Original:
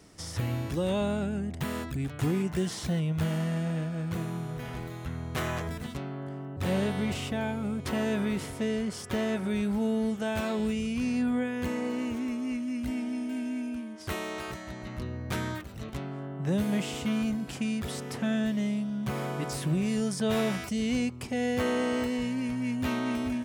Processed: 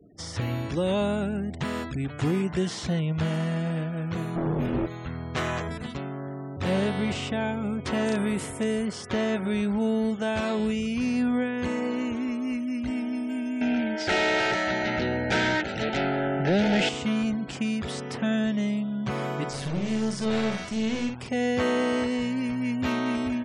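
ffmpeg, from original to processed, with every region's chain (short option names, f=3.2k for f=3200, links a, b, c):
-filter_complex "[0:a]asettb=1/sr,asplit=3[a][b][c];[a]atrim=end=4.364[d];[b]atrim=start=4.36:end=4.86,asetpts=PTS-STARTPTS,afade=t=in:d=0.004:c=qsin,afade=t=out:st=0.496:d=0.004:c=qsin,lowshelf=f=480:t=q:w=3:g=11,asoftclip=type=hard:threshold=-27.5dB,asplit=2[e][f];[f]adelay=21,volume=-4dB[g];[e][g]amix=inputs=2:normalize=0,atrim=end_sample=22050[h];[c]atrim=start=4.856[i];[d][h]acrossfade=d=0.004:c1=hsin:c2=qsin[j];[j][i]acrossfade=d=0.004:c1=qsin:c2=hsin,asettb=1/sr,asplit=3[k][l][m];[k]atrim=end=8.064[n];[l]atrim=start=8.06:end=8.86,asetpts=PTS-STARTPTS,afade=t=in:d=0.004:c=qsin,afade=t=out:st=0.796:d=0.004:c=qsin,highshelf=f=7k:t=q:w=1.5:g=11,aeval=exprs='(mod(11.2*val(0)+1,2)-1)/11.2':c=same[o];[m]atrim=start=8.856[p];[n][o]acrossfade=d=0.004:c1=hsin:c2=qsin[q];[q][p]acrossfade=d=0.004:c1=qsin:c2=hsin,asettb=1/sr,asplit=3[r][s][t];[r]atrim=end=13.614[u];[s]atrim=start=13.61:end=16.89,asetpts=PTS-STARTPTS,afade=t=in:d=0.004:c=qsin,afade=t=out:st=3.276:d=0.004:c=qsin,aemphasis=mode=reproduction:type=50fm,asplit=2[v][w];[w]highpass=f=720:p=1,volume=25dB,asoftclip=type=tanh:threshold=-19dB[x];[v][x]amix=inputs=2:normalize=0,lowpass=f=5.3k:p=1,volume=-6dB,asuperstop=centerf=1100:order=12:qfactor=3[y];[t]atrim=start=16.886[z];[u][y]acrossfade=d=0.004:c1=hsin:c2=qsin[aa];[aa][z]acrossfade=d=0.004:c1=qsin:c2=hsin,asettb=1/sr,asplit=3[ab][ac][ad];[ab]atrim=end=19.494[ae];[ac]atrim=start=19.49:end=21.29,asetpts=PTS-STARTPTS,afade=t=in:d=0.004:c=qsin,afade=t=out:st=1.796:d=0.004:c=qsin,acrusher=bits=8:dc=4:mix=0:aa=0.000001,aeval=exprs='(tanh(22.4*val(0)+0.55)-tanh(0.55))/22.4':c=same,asplit=2[af][ag];[ag]adelay=50,volume=-5dB[ah];[af][ah]amix=inputs=2:normalize=0,atrim=end_sample=79380[ai];[ad]atrim=start=21.286[aj];[ae][ai]acrossfade=d=0.004:c1=hsin:c2=qsin[ak];[ak][aj]acrossfade=d=0.004:c1=qsin:c2=hsin,acrossover=split=7600[al][am];[am]acompressor=threshold=-55dB:ratio=4:attack=1:release=60[an];[al][an]amix=inputs=2:normalize=0,lowshelf=f=110:g=-6.5,afftfilt=real='re*gte(hypot(re,im),0.00316)':imag='im*gte(hypot(re,im),0.00316)':win_size=1024:overlap=0.75,volume=4dB"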